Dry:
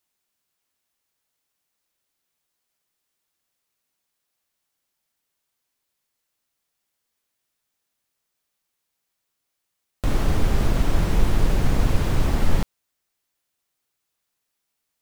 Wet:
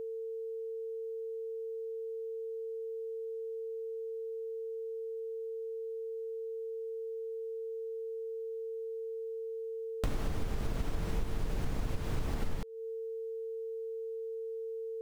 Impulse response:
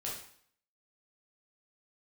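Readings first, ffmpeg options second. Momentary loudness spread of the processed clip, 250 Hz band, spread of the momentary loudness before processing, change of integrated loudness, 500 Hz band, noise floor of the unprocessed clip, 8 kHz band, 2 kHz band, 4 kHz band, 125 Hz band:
2 LU, -14.0 dB, 5 LU, -15.0 dB, +2.5 dB, -79 dBFS, -13.5 dB, -14.0 dB, -13.5 dB, -14.0 dB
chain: -af "aeval=exprs='val(0)+0.02*sin(2*PI*450*n/s)':c=same,acompressor=threshold=0.0447:ratio=6,volume=0.75"

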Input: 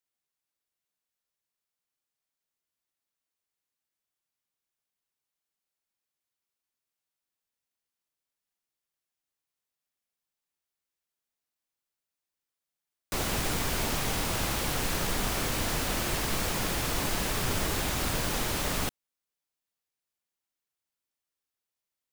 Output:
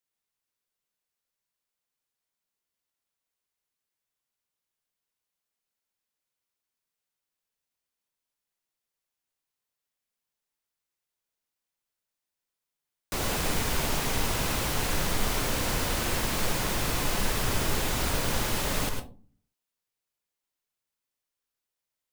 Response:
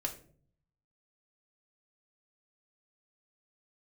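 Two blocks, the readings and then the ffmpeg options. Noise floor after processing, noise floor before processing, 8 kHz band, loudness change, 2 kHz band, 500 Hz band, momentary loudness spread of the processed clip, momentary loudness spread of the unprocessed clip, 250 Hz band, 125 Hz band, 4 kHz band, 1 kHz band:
under -85 dBFS, under -85 dBFS, +1.0 dB, +1.0 dB, +1.0 dB, +1.5 dB, 1 LU, 0 LU, +1.0 dB, +1.5 dB, +1.0 dB, +1.5 dB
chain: -filter_complex "[0:a]asplit=2[s0][s1];[1:a]atrim=start_sample=2205,asetrate=70560,aresample=44100,adelay=104[s2];[s1][s2]afir=irnorm=-1:irlink=0,volume=0.75[s3];[s0][s3]amix=inputs=2:normalize=0"

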